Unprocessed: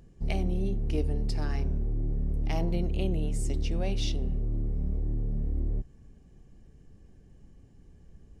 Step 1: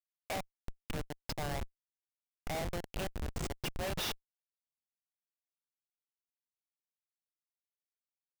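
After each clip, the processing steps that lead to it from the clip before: elliptic band-pass 640–7300 Hz, stop band 60 dB; Schmitt trigger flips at -40.5 dBFS; trim +12.5 dB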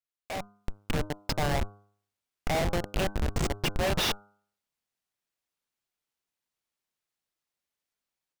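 level rider gain up to 10 dB; treble shelf 7.9 kHz -6.5 dB; de-hum 102 Hz, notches 15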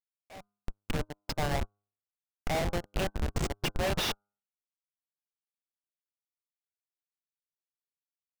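upward expansion 2.5:1, over -42 dBFS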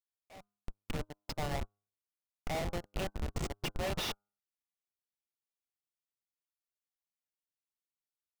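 band-stop 1.6 kHz, Q 13; trim -5.5 dB

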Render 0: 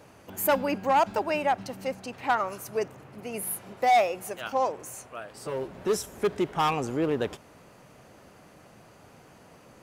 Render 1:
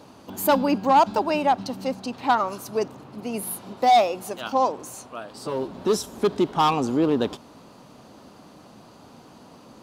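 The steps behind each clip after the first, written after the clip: ten-band graphic EQ 250 Hz +10 dB, 1 kHz +7 dB, 2 kHz -6 dB, 4 kHz +10 dB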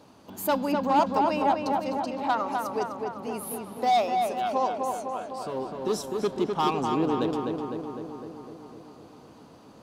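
filtered feedback delay 253 ms, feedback 69%, low-pass 2.7 kHz, level -3.5 dB; trim -6 dB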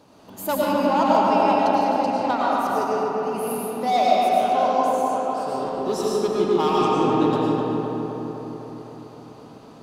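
algorithmic reverb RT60 1.9 s, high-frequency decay 0.7×, pre-delay 65 ms, DRR -4.5 dB

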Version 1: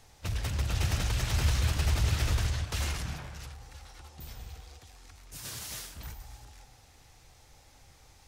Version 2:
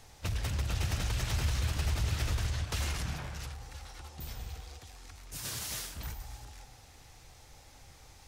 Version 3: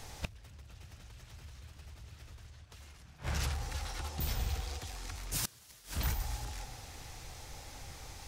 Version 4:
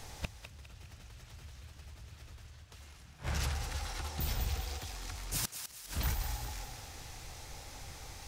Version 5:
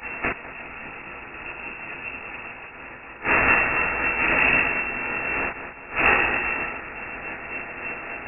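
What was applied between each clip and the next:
compression 2:1, threshold -35 dBFS, peak gain reduction 7.5 dB; trim +2.5 dB
inverted gate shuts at -28 dBFS, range -27 dB; trim +7 dB
thinning echo 203 ms, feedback 46%, high-pass 860 Hz, level -7.5 dB
spectral peaks clipped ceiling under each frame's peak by 23 dB; reverberation, pre-delay 10 ms, DRR -4.5 dB; frequency inversion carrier 2.7 kHz; trim +8 dB

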